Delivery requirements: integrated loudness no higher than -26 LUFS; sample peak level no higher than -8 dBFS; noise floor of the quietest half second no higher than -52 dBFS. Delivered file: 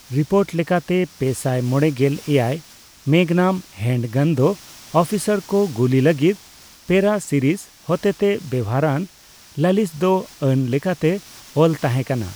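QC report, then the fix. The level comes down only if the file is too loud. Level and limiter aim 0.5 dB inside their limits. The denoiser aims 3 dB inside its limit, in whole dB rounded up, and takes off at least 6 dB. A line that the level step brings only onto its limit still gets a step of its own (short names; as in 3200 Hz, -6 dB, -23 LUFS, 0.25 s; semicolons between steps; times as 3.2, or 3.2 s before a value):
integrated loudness -19.5 LUFS: fail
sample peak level -2.5 dBFS: fail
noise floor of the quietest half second -47 dBFS: fail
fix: gain -7 dB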